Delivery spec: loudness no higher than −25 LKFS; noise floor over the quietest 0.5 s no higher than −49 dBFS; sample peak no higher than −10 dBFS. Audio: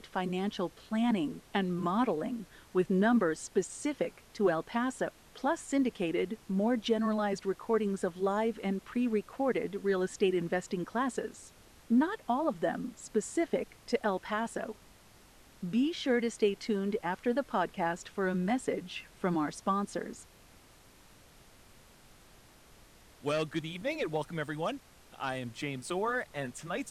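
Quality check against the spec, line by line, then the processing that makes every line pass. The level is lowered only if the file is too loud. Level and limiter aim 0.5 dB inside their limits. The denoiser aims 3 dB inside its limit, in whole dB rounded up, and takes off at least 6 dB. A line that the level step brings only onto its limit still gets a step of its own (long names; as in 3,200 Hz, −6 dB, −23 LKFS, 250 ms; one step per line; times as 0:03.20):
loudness −33.0 LKFS: in spec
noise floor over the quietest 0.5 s −58 dBFS: in spec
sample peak −16.5 dBFS: in spec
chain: no processing needed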